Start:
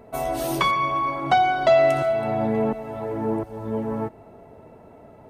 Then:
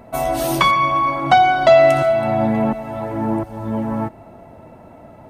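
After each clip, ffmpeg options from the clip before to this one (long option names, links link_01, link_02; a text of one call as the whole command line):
ffmpeg -i in.wav -af "equalizer=frequency=430:width=7.3:gain=-14,volume=6.5dB" out.wav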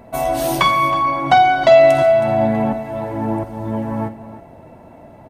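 ffmpeg -i in.wav -af "bandreject=frequency=1300:width=16,aecho=1:1:47|318:0.224|0.188" out.wav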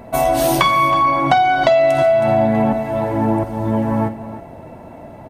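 ffmpeg -i in.wav -af "acompressor=threshold=-16dB:ratio=6,volume=5dB" out.wav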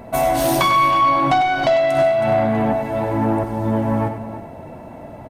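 ffmpeg -i in.wav -af "asoftclip=type=tanh:threshold=-10.5dB,aecho=1:1:98:0.355" out.wav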